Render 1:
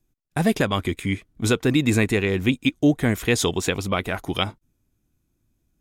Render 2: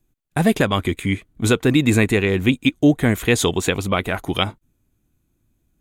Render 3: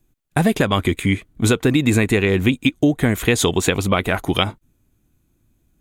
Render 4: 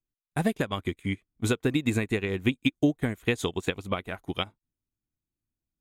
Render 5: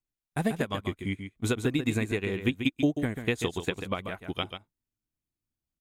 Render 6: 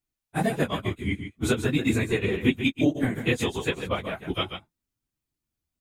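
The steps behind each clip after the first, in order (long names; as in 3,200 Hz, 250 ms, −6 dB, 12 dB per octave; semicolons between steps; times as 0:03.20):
parametric band 5,300 Hz −8 dB 0.29 octaves; level +3.5 dB
downward compressor, threshold −16 dBFS, peak gain reduction 7.5 dB; level +4 dB
expander for the loud parts 2.5 to 1, over −26 dBFS; level −5.5 dB
single-tap delay 139 ms −8.5 dB; level −2 dB
random phases in long frames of 50 ms; level +4 dB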